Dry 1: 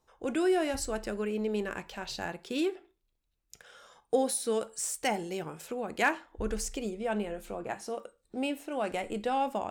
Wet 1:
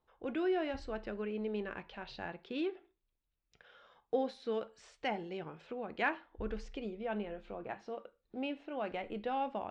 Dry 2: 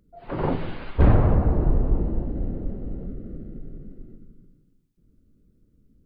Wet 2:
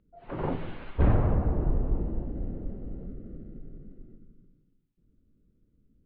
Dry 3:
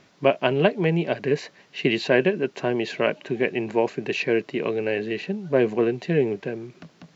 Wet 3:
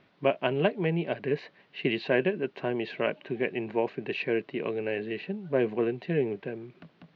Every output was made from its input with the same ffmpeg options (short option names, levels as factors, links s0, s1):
-af "lowpass=f=3800:w=0.5412,lowpass=f=3800:w=1.3066,volume=0.501"